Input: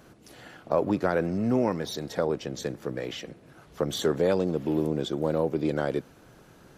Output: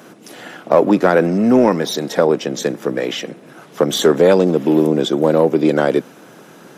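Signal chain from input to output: high-pass 170 Hz 24 dB/octave; band-stop 4.4 kHz, Q 12; in parallel at -3 dB: overload inside the chain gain 18 dB; on the sum: trim +8.5 dB

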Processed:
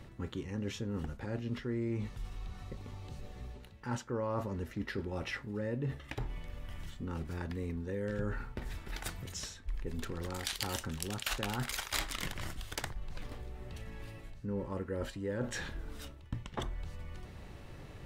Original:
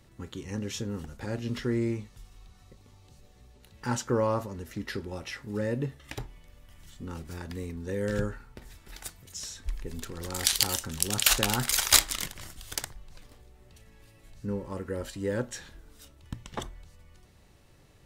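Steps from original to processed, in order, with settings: tone controls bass +1 dB, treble -10 dB; reverse; compression 4:1, threshold -46 dBFS, peak gain reduction 21.5 dB; reverse; trim +9.5 dB

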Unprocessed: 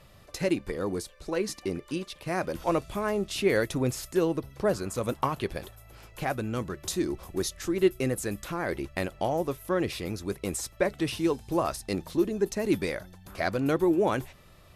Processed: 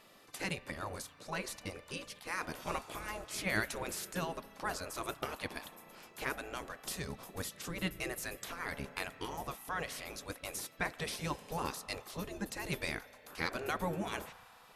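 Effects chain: spring tank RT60 2.5 s, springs 35 ms, chirp 40 ms, DRR 17.5 dB; spectral gate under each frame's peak -10 dB weak; trim -1.5 dB

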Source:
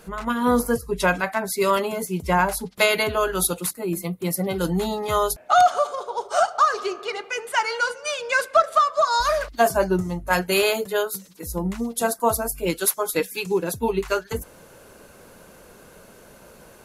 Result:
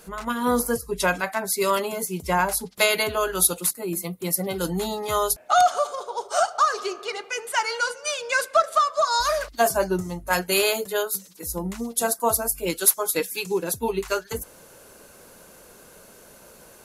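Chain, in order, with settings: tone controls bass -3 dB, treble +6 dB; trim -2 dB

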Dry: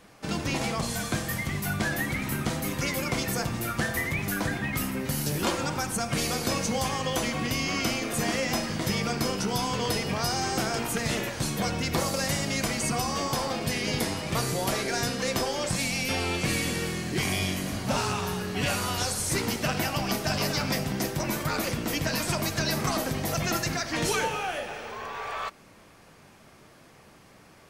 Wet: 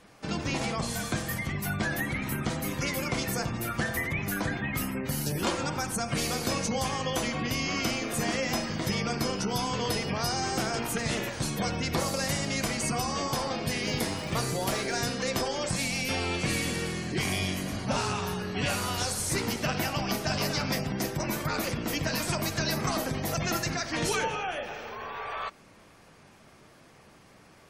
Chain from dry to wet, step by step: spectral gate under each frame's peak -30 dB strong; 13.82–14.96 s: crackle 250 per s -37 dBFS; trim -1.5 dB

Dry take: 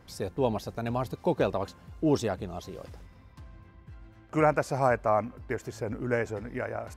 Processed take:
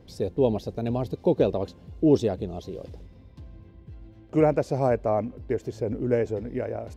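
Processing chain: FFT filter 160 Hz 0 dB, 450 Hz +3 dB, 1.3 kHz -14 dB, 3.6 kHz -3 dB, 8.6 kHz -11 dB; trim +4 dB

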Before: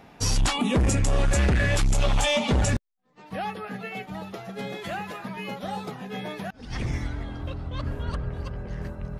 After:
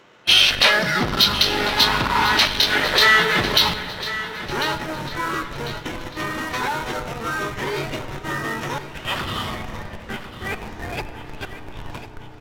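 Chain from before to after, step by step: high-pass 1.1 kHz 6 dB/octave; peaking EQ 6 kHz +9 dB 1.8 oct; waveshaping leveller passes 1; formant shift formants -5 st; in parallel at -9.5 dB: Schmitt trigger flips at -34 dBFS; on the sum: feedback delay 776 ms, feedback 41%, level -13 dB; on a send at -9.5 dB: reverberation RT60 1.8 s, pre-delay 6 ms; on the sum: speed mistake 45 rpm record played at 33 rpm; trim +4 dB

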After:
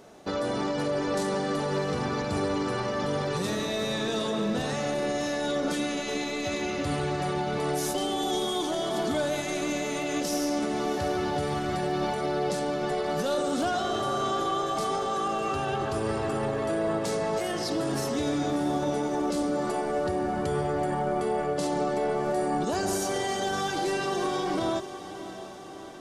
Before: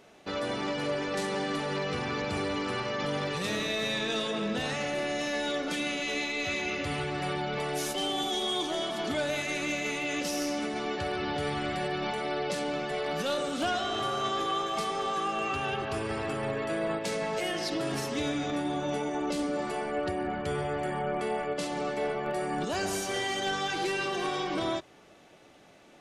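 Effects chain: peak limiter -26 dBFS, peak gain reduction 5 dB; peaking EQ 2.5 kHz -9.5 dB 1.2 oct; on a send: echo that smears into a reverb 661 ms, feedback 62%, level -13 dB; on the sum: trim +6.5 dB

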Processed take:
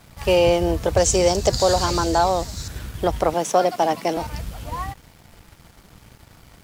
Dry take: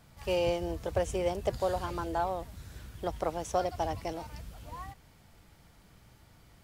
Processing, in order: 0.97–2.68 s: high-order bell 5.6 kHz +13 dB 1.2 oct; 3.34–4.17 s: steep high-pass 160 Hz 36 dB/octave; in parallel at +2 dB: peak limiter -24.5 dBFS, peak gain reduction 8.5 dB; on the sum: crossover distortion -55.5 dBFS; trim +7.5 dB

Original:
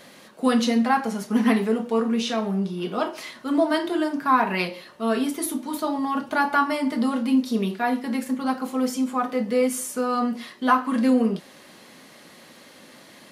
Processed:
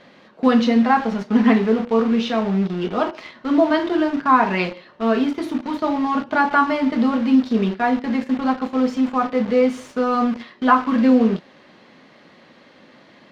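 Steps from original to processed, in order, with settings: in parallel at -4 dB: bit crusher 5-bit; on the sum: distance through air 210 m; trim +1 dB

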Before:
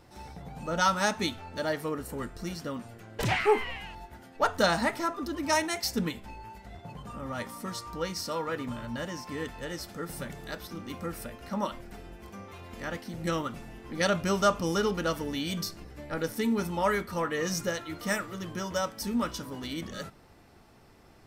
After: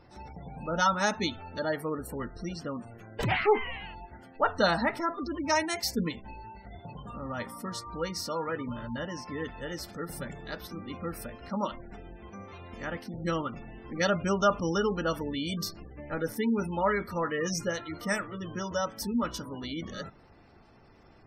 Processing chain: spectral gate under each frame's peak -25 dB strong

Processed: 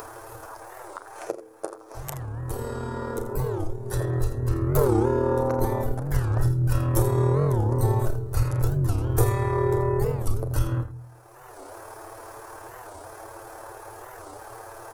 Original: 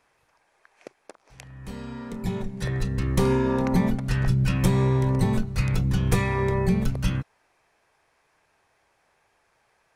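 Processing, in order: treble shelf 5.8 kHz +10 dB; in parallel at +1 dB: compression, threshold -30 dBFS, peak gain reduction 14.5 dB; on the sum: FFT filter 130 Hz 0 dB, 190 Hz -27 dB, 310 Hz +3 dB, 1.4 kHz -3 dB, 2.2 kHz -19 dB, 3.6 kHz -16 dB, 8.6 kHz -9 dB, 13 kHz -3 dB; early reflections 25 ms -9.5 dB, 57 ms -11.5 dB; upward compressor, threshold -23 dBFS; de-hum 63.15 Hz, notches 8; granular stretch 1.5×, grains 54 ms; warped record 45 rpm, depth 250 cents; trim +1 dB

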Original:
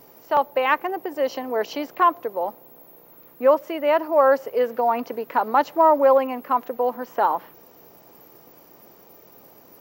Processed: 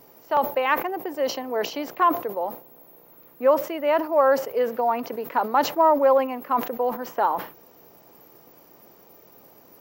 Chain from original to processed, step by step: decay stretcher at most 140 dB/s; trim -2 dB

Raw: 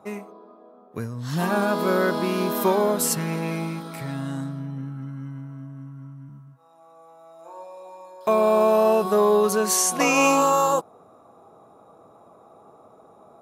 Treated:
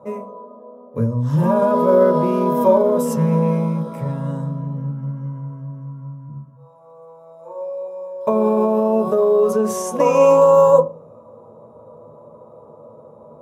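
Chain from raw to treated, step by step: on a send at -3 dB: reverberation RT60 0.30 s, pre-delay 3 ms; on the sum: peak limiter -10.5 dBFS, peak gain reduction 7 dB; bass shelf 490 Hz +11 dB; band-stop 4.3 kHz, Q 5.3; small resonant body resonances 560/970 Hz, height 18 dB, ringing for 45 ms; trim -9 dB

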